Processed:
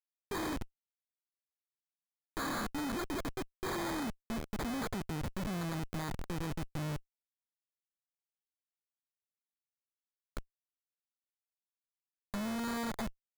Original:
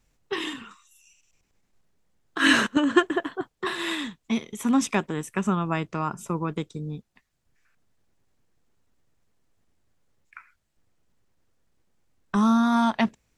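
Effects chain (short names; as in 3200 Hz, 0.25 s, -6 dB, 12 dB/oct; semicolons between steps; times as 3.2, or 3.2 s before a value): Schmitt trigger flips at -33 dBFS; sample-rate reducer 2800 Hz, jitter 0%; gain -7.5 dB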